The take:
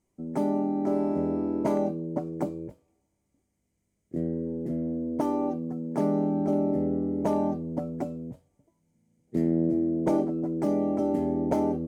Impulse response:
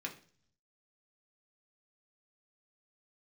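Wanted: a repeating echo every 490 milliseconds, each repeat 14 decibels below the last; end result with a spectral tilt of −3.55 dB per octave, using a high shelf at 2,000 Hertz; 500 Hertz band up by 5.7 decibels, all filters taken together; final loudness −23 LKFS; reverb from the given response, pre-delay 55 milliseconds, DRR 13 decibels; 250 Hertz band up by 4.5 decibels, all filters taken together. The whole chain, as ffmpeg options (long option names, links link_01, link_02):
-filter_complex "[0:a]equalizer=frequency=250:width_type=o:gain=3.5,equalizer=frequency=500:width_type=o:gain=7,highshelf=frequency=2000:gain=-7,aecho=1:1:490|980:0.2|0.0399,asplit=2[link_01][link_02];[1:a]atrim=start_sample=2205,adelay=55[link_03];[link_02][link_03]afir=irnorm=-1:irlink=0,volume=-13.5dB[link_04];[link_01][link_04]amix=inputs=2:normalize=0,volume=-0.5dB"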